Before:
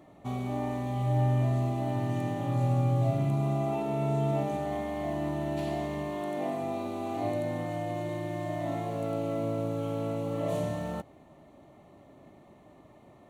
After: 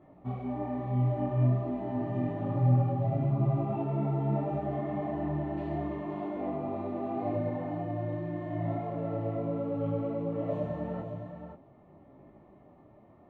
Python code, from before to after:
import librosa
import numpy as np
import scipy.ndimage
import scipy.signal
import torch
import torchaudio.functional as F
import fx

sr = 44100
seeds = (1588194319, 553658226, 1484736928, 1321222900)

y = scipy.signal.sosfilt(scipy.signal.butter(2, 1800.0, 'lowpass', fs=sr, output='sos'), x)
y = fx.low_shelf(y, sr, hz=360.0, db=3.5)
y = y + 10.0 ** (-8.0 / 20.0) * np.pad(y, (int(523 * sr / 1000.0), 0))[:len(y)]
y = fx.detune_double(y, sr, cents=28)